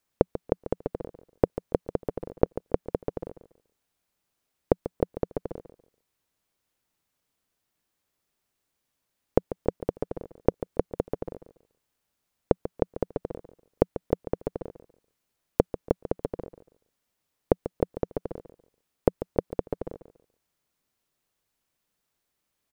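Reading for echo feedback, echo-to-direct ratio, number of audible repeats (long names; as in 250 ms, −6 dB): 23%, −13.0 dB, 2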